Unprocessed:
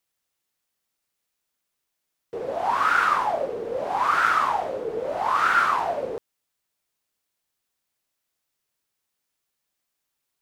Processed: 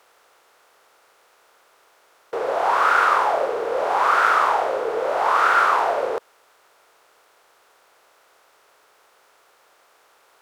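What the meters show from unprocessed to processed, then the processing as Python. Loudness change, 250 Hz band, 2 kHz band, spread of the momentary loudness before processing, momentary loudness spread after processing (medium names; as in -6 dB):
+3.5 dB, +0.5 dB, +3.5 dB, 12 LU, 9 LU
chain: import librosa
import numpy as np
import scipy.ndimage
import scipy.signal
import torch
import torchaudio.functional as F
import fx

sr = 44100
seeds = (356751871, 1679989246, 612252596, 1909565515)

y = fx.bin_compress(x, sr, power=0.6)
y = fx.low_shelf_res(y, sr, hz=300.0, db=-8.0, q=1.5)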